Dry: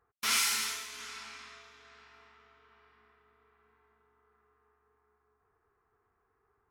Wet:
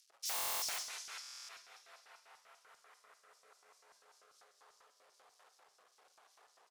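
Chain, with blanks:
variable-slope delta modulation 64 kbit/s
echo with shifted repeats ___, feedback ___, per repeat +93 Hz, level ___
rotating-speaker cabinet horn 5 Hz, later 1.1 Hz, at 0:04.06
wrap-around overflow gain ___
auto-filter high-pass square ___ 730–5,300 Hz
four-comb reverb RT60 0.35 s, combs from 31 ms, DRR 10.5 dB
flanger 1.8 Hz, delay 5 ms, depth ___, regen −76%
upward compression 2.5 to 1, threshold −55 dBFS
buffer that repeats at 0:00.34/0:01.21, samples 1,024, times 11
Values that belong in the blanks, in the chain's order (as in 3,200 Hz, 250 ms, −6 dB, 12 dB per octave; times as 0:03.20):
121 ms, 43%, −5.5 dB, 29.5 dB, 5.1 Hz, 3.5 ms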